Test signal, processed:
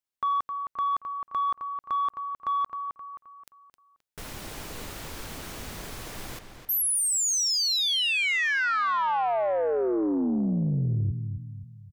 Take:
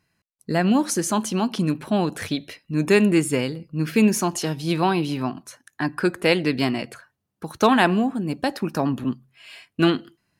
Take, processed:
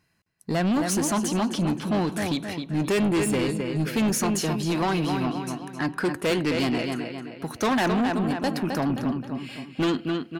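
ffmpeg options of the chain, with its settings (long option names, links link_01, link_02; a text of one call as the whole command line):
ffmpeg -i in.wav -filter_complex "[0:a]asplit=2[link_01][link_02];[link_02]adelay=263,lowpass=frequency=4900:poles=1,volume=-8dB,asplit=2[link_03][link_04];[link_04]adelay=263,lowpass=frequency=4900:poles=1,volume=0.43,asplit=2[link_05][link_06];[link_06]adelay=263,lowpass=frequency=4900:poles=1,volume=0.43,asplit=2[link_07][link_08];[link_08]adelay=263,lowpass=frequency=4900:poles=1,volume=0.43,asplit=2[link_09][link_10];[link_10]adelay=263,lowpass=frequency=4900:poles=1,volume=0.43[link_11];[link_01][link_03][link_05][link_07][link_09][link_11]amix=inputs=6:normalize=0,aeval=exprs='0.631*(cos(1*acos(clip(val(0)/0.631,-1,1)))-cos(1*PI/2))+0.0891*(cos(5*acos(clip(val(0)/0.631,-1,1)))-cos(5*PI/2))+0.0282*(cos(6*acos(clip(val(0)/0.631,-1,1)))-cos(6*PI/2))+0.0501*(cos(7*acos(clip(val(0)/0.631,-1,1)))-cos(7*PI/2))+0.02*(cos(8*acos(clip(val(0)/0.631,-1,1)))-cos(8*PI/2))':channel_layout=same,asoftclip=type=tanh:threshold=-19.5dB" out.wav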